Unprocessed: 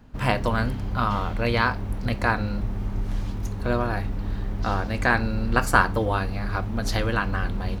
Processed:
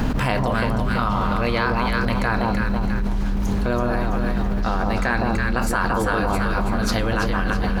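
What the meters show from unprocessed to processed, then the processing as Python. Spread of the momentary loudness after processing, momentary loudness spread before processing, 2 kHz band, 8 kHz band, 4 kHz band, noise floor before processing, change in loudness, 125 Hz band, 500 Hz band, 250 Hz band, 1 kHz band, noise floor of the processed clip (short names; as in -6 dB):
3 LU, 9 LU, +1.5 dB, +3.5 dB, +3.0 dB, -31 dBFS, +3.0 dB, +2.0 dB, +4.0 dB, +6.0 dB, +3.0 dB, -22 dBFS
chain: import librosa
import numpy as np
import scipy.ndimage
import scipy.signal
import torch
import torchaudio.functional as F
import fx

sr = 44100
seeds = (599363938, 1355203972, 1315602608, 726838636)

p1 = fx.peak_eq(x, sr, hz=100.0, db=-7.5, octaves=0.25)
p2 = p1 + fx.echo_alternate(p1, sr, ms=165, hz=1100.0, feedback_pct=64, wet_db=-2, dry=0)
p3 = fx.env_flatten(p2, sr, amount_pct=100)
y = F.gain(torch.from_numpy(p3), -7.0).numpy()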